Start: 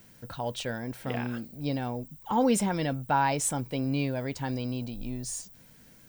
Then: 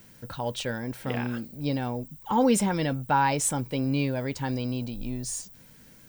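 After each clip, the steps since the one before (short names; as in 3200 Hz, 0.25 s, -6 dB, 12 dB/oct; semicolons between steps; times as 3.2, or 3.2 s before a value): notch 690 Hz, Q 12; gain +2.5 dB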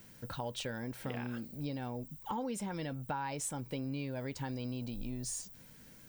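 compressor 6:1, threshold -32 dBFS, peak gain reduction 14 dB; gain -3.5 dB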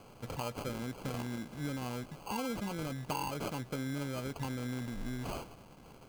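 sample-and-hold 24×; gain +1 dB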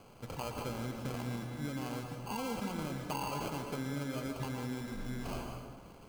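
plate-style reverb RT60 1.4 s, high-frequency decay 0.6×, pre-delay 0.105 s, DRR 3 dB; gain -2 dB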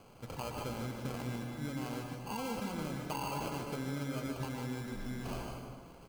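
echo 0.15 s -8 dB; gain -1 dB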